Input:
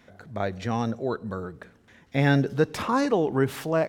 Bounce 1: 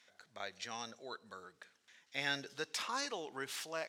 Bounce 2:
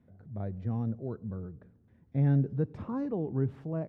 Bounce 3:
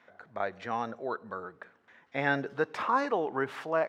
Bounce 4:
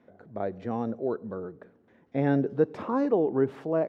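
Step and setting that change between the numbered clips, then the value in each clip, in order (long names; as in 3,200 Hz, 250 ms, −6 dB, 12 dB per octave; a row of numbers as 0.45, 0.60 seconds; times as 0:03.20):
resonant band-pass, frequency: 5,500, 100, 1,200, 390 Hertz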